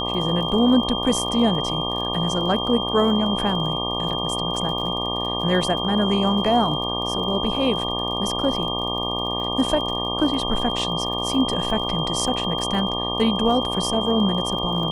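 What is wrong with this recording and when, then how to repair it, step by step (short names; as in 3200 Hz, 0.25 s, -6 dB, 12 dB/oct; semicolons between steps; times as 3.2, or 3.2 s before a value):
buzz 60 Hz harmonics 20 -28 dBFS
crackle 38/s -31 dBFS
tone 3200 Hz -26 dBFS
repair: de-click; de-hum 60 Hz, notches 20; notch 3200 Hz, Q 30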